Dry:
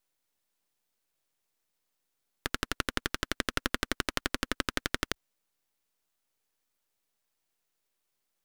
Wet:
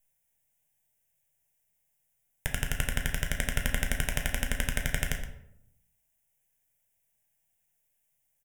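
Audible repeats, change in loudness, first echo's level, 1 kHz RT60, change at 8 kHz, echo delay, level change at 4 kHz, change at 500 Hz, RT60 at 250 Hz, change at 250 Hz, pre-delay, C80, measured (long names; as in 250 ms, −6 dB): 1, +1.0 dB, −13.0 dB, 0.70 s, +4.5 dB, 120 ms, −3.0 dB, −2.0 dB, 0.95 s, −2.0 dB, 6 ms, 9.5 dB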